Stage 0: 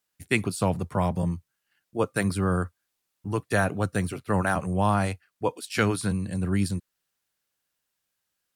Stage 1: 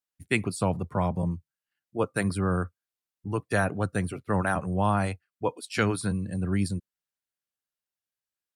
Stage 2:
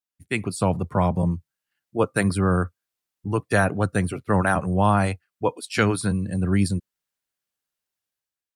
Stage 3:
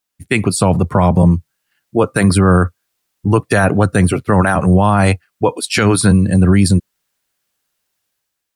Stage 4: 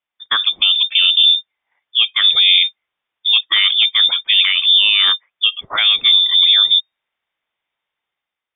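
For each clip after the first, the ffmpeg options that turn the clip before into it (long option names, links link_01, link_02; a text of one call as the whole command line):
ffmpeg -i in.wav -af "afftdn=noise_reduction=12:noise_floor=-45,volume=-1.5dB" out.wav
ffmpeg -i in.wav -af "dynaudnorm=framelen=100:gausssize=9:maxgain=9dB,volume=-3dB" out.wav
ffmpeg -i in.wav -af "alimiter=level_in=16dB:limit=-1dB:release=50:level=0:latency=1,volume=-2dB" out.wav
ffmpeg -i in.wav -af "lowpass=frequency=3100:width_type=q:width=0.5098,lowpass=frequency=3100:width_type=q:width=0.6013,lowpass=frequency=3100:width_type=q:width=0.9,lowpass=frequency=3100:width_type=q:width=2.563,afreqshift=-3700,volume=-1.5dB" out.wav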